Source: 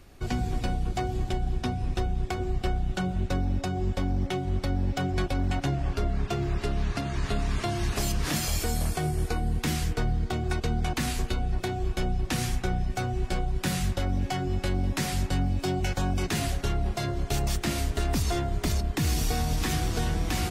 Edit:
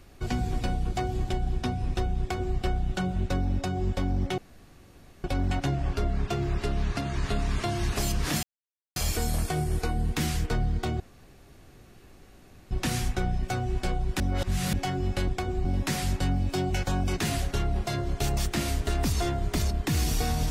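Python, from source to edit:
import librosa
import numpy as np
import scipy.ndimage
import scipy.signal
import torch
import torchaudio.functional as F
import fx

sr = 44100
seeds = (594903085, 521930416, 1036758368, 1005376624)

y = fx.edit(x, sr, fx.duplicate(start_s=2.2, length_s=0.37, to_s=14.75),
    fx.room_tone_fill(start_s=4.38, length_s=0.86),
    fx.insert_silence(at_s=8.43, length_s=0.53),
    fx.room_tone_fill(start_s=10.47, length_s=1.71),
    fx.reverse_span(start_s=13.67, length_s=0.53), tone=tone)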